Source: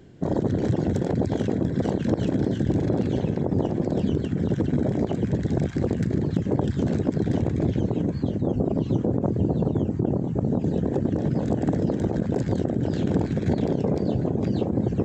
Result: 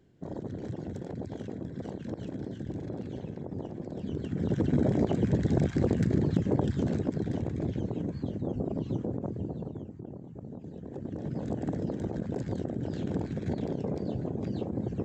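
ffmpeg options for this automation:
ffmpeg -i in.wav -af "volume=8dB,afade=type=in:start_time=4:duration=0.8:silence=0.251189,afade=type=out:start_time=6.22:duration=1.11:silence=0.473151,afade=type=out:start_time=8.91:duration=1.04:silence=0.298538,afade=type=in:start_time=10.8:duration=0.69:silence=0.316228" out.wav

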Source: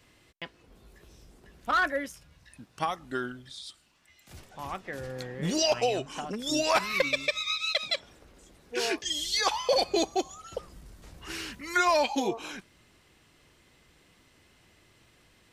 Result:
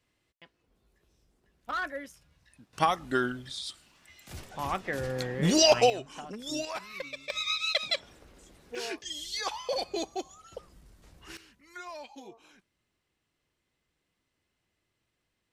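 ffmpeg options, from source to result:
ffmpeg -i in.wav -af "asetnsamples=nb_out_samples=441:pad=0,asendcmd='1.69 volume volume -7.5dB;2.73 volume volume 5dB;5.9 volume volume -6dB;6.65 volume volume -13dB;7.3 volume volume 0dB;8.75 volume volume -7dB;11.37 volume volume -19dB',volume=-15dB" out.wav

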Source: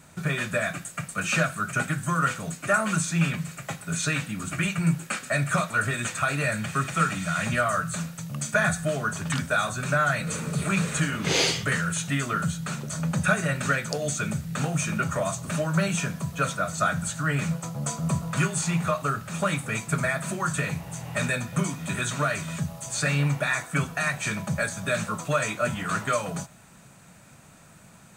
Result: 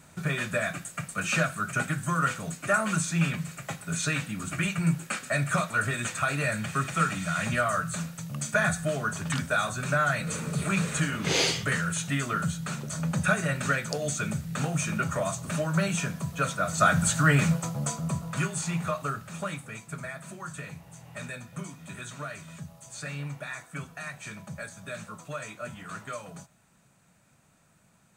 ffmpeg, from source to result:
ffmpeg -i in.wav -af "volume=6dB,afade=type=in:start_time=16.56:duration=0.57:silence=0.398107,afade=type=out:start_time=17.13:duration=0.96:silence=0.298538,afade=type=out:start_time=19.05:duration=0.71:silence=0.421697" out.wav

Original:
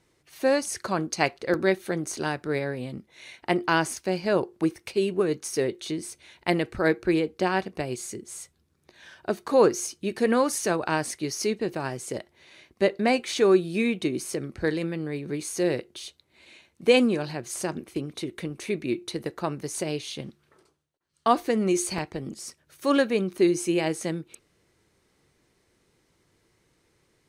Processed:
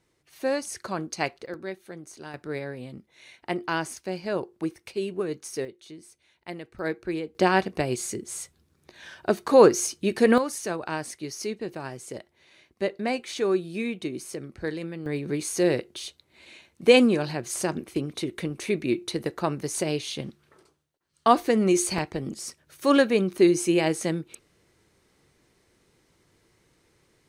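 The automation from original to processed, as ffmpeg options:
ffmpeg -i in.wav -af "asetnsamples=nb_out_samples=441:pad=0,asendcmd='1.46 volume volume -12.5dB;2.34 volume volume -5dB;5.65 volume volume -13.5dB;6.79 volume volume -7dB;7.35 volume volume 4dB;10.38 volume volume -5dB;15.06 volume volume 2.5dB',volume=-4dB" out.wav

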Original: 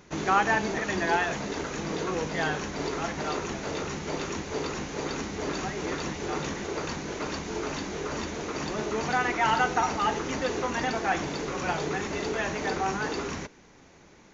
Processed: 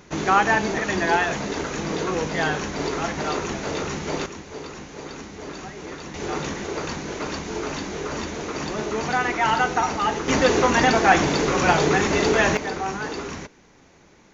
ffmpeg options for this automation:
ffmpeg -i in.wav -af "asetnsamples=nb_out_samples=441:pad=0,asendcmd='4.26 volume volume -4dB;6.14 volume volume 3.5dB;10.28 volume volume 11dB;12.57 volume volume 1dB',volume=5dB" out.wav

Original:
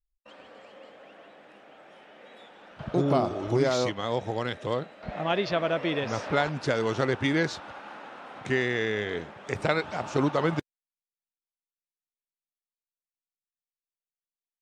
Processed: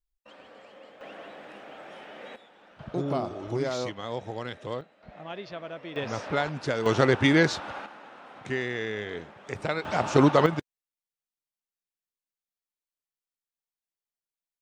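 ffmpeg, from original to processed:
ffmpeg -i in.wav -af "asetnsamples=nb_out_samples=441:pad=0,asendcmd='1.01 volume volume 7dB;2.36 volume volume -5dB;4.81 volume volume -12dB;5.96 volume volume -2dB;6.86 volume volume 5dB;7.86 volume volume -4dB;9.85 volume volume 6dB;10.46 volume volume -1.5dB',volume=-1dB" out.wav

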